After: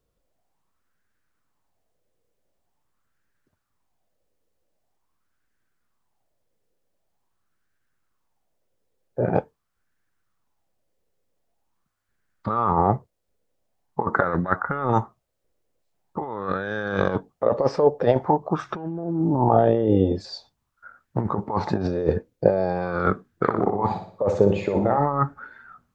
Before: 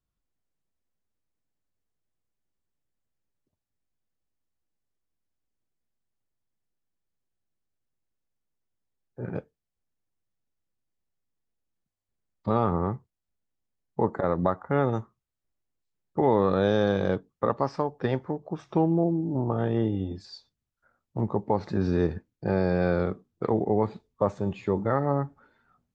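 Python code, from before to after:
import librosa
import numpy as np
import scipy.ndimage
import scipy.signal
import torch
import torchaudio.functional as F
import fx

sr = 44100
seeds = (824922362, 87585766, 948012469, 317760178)

y = fx.over_compress(x, sr, threshold_db=-28.0, ratio=-0.5)
y = fx.room_flutter(y, sr, wall_m=10.2, rt60_s=0.52, at=(23.49, 24.97), fade=0.02)
y = fx.bell_lfo(y, sr, hz=0.45, low_hz=480.0, high_hz=1600.0, db=15)
y = y * librosa.db_to_amplitude(4.0)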